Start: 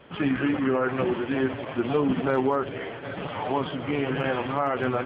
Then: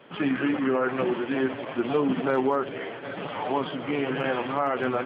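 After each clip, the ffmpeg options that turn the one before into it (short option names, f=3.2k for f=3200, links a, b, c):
-af "highpass=170"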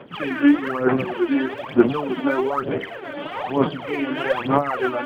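-af "aphaser=in_gain=1:out_gain=1:delay=3.5:decay=0.79:speed=1.1:type=sinusoidal"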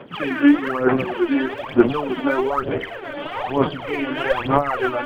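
-af "asubboost=boost=8:cutoff=66,volume=2dB"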